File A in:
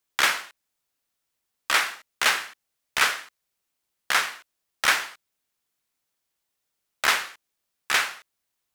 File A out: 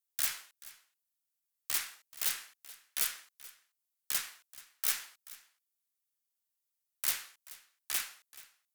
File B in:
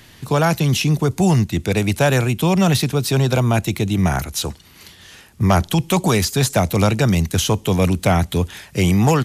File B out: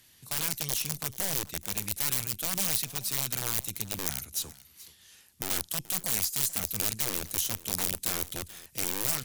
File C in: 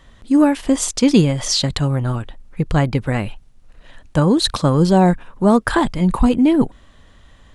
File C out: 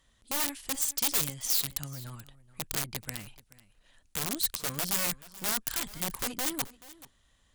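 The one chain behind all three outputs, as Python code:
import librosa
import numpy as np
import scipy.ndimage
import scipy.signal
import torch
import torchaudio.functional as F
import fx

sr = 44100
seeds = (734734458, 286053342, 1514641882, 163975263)

y = fx.cheby_harmonics(x, sr, harmonics=(6,), levels_db=(-17,), full_scale_db=-1.0)
y = fx.dynamic_eq(y, sr, hz=600.0, q=0.82, threshold_db=-30.0, ratio=4.0, max_db=-6)
y = (np.mod(10.0 ** (10.5 / 20.0) * y + 1.0, 2.0) - 1.0) / 10.0 ** (10.5 / 20.0)
y = scipy.signal.lfilter([1.0, -0.8], [1.0], y)
y = y + 10.0 ** (-19.0 / 20.0) * np.pad(y, (int(431 * sr / 1000.0), 0))[:len(y)]
y = F.gain(torch.from_numpy(y), -7.5).numpy()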